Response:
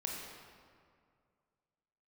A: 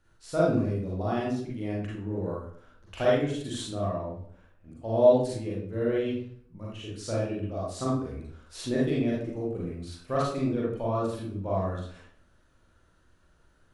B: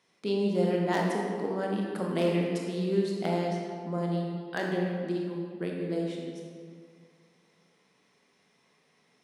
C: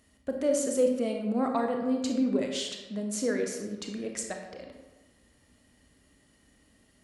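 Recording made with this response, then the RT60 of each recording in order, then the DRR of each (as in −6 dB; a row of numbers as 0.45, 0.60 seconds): B; 0.60, 2.2, 1.2 seconds; −6.0, −1.5, 2.5 decibels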